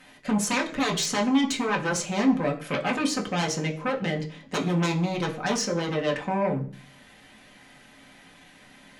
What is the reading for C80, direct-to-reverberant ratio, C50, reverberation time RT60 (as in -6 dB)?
17.0 dB, -1.0 dB, 13.0 dB, 0.45 s